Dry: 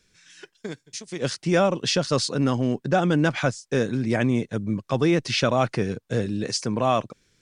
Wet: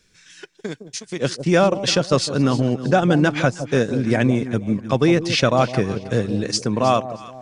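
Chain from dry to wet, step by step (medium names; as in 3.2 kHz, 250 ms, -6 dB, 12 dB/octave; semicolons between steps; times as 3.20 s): echo whose repeats swap between lows and highs 158 ms, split 850 Hz, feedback 55%, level -9 dB; transient shaper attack +1 dB, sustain -5 dB; trim +4 dB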